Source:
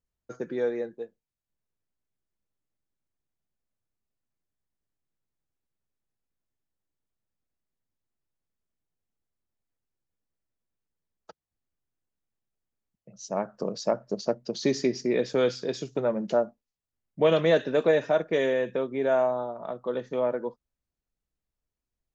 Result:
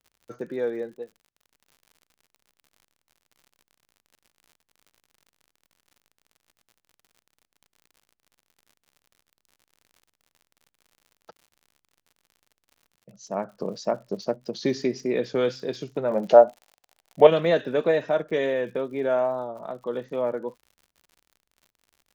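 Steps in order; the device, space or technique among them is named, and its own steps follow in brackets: lo-fi chain (LPF 5400 Hz; wow and flutter; crackle 71/s -44 dBFS); 16.11–17.27 EQ curve 270 Hz 0 dB, 750 Hz +15 dB, 1100 Hz +7 dB

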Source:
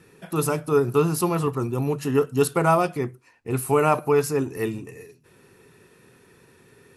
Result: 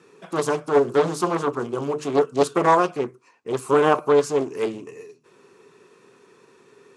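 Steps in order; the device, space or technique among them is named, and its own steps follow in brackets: 0.7–2.2 notches 50/100/150/200/250/300/350/400/450 Hz; full-range speaker at full volume (Doppler distortion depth 0.72 ms; speaker cabinet 220–8600 Hz, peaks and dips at 410 Hz +5 dB, 1100 Hz +8 dB, 1800 Hz -4 dB, 6600 Hz +3 dB)

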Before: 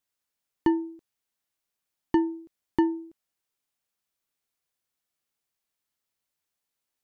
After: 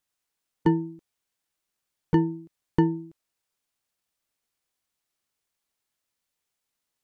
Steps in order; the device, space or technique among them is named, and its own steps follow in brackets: octave pedal (harmoniser -12 st -3 dB)

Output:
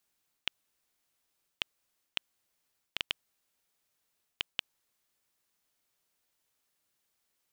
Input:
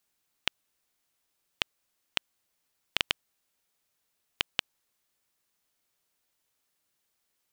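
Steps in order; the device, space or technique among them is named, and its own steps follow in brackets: compression on the reversed sound (reverse; compressor 5:1, threshold -29 dBFS, peak gain reduction 7.5 dB; reverse); gain -1 dB

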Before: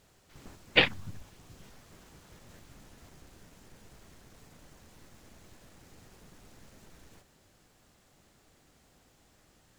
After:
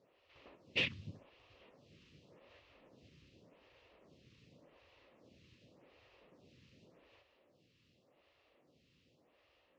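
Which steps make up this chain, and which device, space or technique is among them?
vibe pedal into a guitar amplifier (photocell phaser 0.87 Hz; tube stage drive 32 dB, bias 0.65; speaker cabinet 89–4600 Hz, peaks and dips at 200 Hz -4 dB, 540 Hz +6 dB, 810 Hz -5 dB, 1500 Hz -9 dB, 2700 Hz +7 dB)

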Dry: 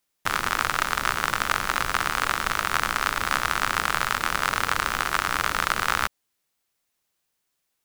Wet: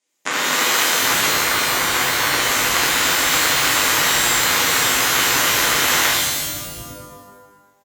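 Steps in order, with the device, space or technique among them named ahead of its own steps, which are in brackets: 1.29–2.33 elliptic low-pass 2300 Hz; car door speaker (speaker cabinet 89–9300 Hz, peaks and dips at 110 Hz +5 dB, 270 Hz +7 dB, 470 Hz +5 dB, 1300 Hz -8 dB, 2100 Hz +3 dB, 6800 Hz +9 dB); bands offset in time highs, lows 0.74 s, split 170 Hz; shimmer reverb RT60 1.2 s, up +12 st, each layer -2 dB, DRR -7 dB; gain -1 dB

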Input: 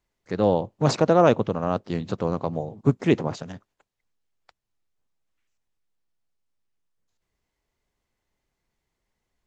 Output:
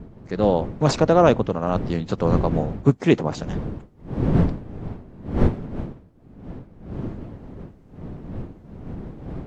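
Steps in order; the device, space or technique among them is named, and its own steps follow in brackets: smartphone video outdoors (wind noise 230 Hz -32 dBFS; AGC gain up to 5 dB; AAC 64 kbps 48000 Hz)

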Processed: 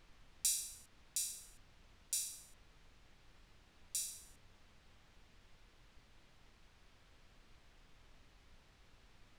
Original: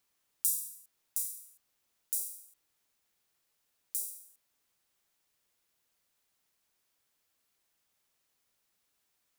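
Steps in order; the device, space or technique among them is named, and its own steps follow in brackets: aircraft cabin announcement (BPF 410–3600 Hz; soft clip -33.5 dBFS, distortion -24 dB; brown noise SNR 14 dB); gain +15 dB

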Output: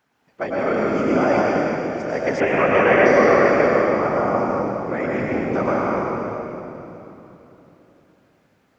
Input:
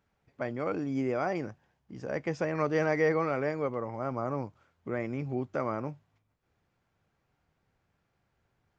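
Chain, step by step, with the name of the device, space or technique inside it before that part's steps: whispering ghost (whisperiser; HPF 330 Hz 6 dB/oct; reverb RT60 3.3 s, pre-delay 94 ms, DRR -5 dB); 2.4–3.06 resonant high shelf 3600 Hz -8 dB, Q 3; gain +9 dB

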